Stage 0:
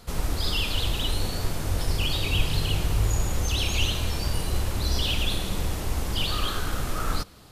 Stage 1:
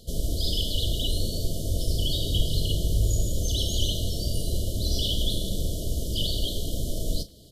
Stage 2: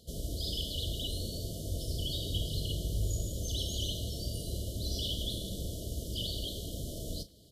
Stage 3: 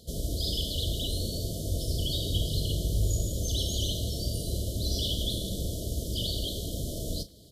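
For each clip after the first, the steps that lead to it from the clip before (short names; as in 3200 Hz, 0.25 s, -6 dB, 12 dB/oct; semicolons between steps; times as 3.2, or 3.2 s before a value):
doubler 36 ms -13 dB; FFT band-reject 690–2900 Hz; crackle 24/s -49 dBFS
HPF 43 Hz; gain -7.5 dB
notch 2800 Hz, Q 6; gain +5.5 dB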